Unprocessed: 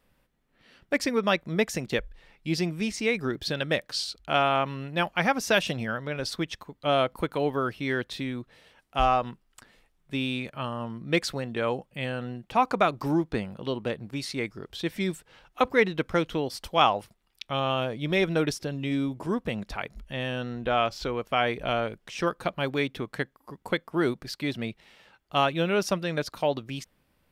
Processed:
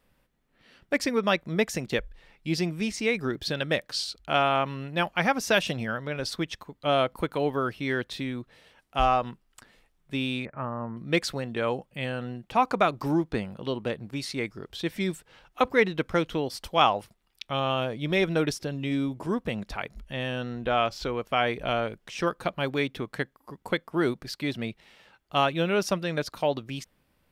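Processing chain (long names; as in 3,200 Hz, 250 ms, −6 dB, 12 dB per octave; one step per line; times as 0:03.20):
0:10.45–0:10.97: Butterworth low-pass 2,100 Hz 48 dB per octave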